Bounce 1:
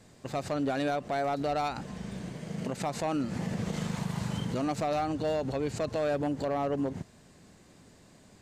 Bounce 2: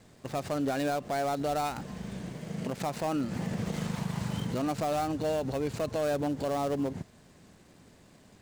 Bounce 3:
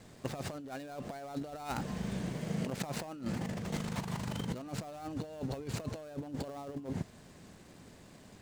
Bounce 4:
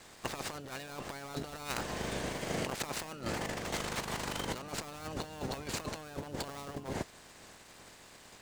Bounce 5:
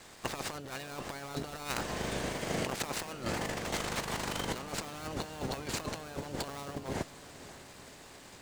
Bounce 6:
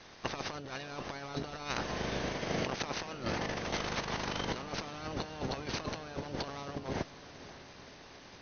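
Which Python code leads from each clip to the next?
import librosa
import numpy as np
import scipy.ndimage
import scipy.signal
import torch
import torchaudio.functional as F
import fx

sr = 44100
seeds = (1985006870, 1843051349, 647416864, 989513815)

y1 = fx.dead_time(x, sr, dead_ms=0.08)
y2 = fx.over_compress(y1, sr, threshold_db=-35.0, ratio=-0.5)
y2 = F.gain(torch.from_numpy(y2), -2.5).numpy()
y3 = fx.spec_clip(y2, sr, under_db=18)
y4 = fx.echo_diffused(y3, sr, ms=542, feedback_pct=62, wet_db=-16)
y4 = F.gain(torch.from_numpy(y4), 1.5).numpy()
y5 = fx.brickwall_lowpass(y4, sr, high_hz=6400.0)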